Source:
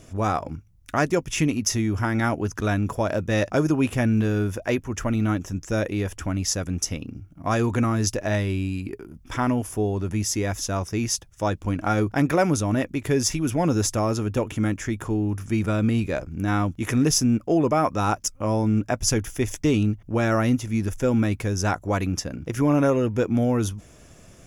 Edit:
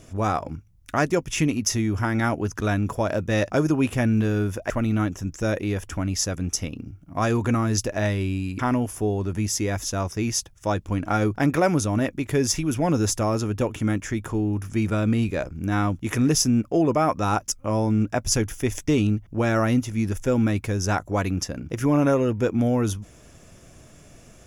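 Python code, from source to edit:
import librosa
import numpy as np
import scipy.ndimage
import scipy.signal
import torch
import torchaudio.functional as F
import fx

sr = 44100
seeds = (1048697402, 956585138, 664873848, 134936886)

y = fx.edit(x, sr, fx.cut(start_s=4.7, length_s=0.29),
    fx.cut(start_s=8.88, length_s=0.47), tone=tone)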